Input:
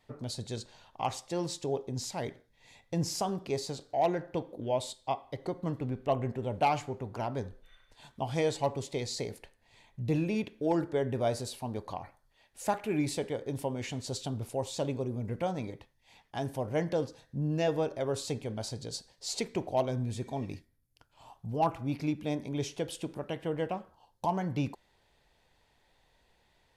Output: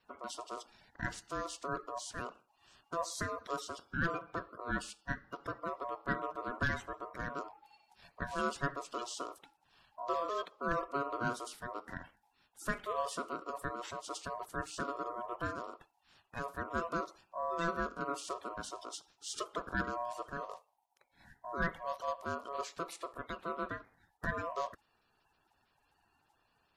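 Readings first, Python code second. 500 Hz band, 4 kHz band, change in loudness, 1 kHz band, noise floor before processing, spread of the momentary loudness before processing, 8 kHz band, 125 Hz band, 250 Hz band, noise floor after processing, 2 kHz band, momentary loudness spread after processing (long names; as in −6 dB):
−8.5 dB, −6.5 dB, −5.5 dB, −2.5 dB, −70 dBFS, 10 LU, −5.5 dB, −12.0 dB, −10.0 dB, −76 dBFS, +6.0 dB, 9 LU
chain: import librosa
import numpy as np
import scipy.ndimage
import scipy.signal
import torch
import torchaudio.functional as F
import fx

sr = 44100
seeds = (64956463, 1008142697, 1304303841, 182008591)

y = fx.spec_quant(x, sr, step_db=30)
y = y * np.sin(2.0 * np.pi * 840.0 * np.arange(len(y)) / sr)
y = y * 10.0 ** (-2.5 / 20.0)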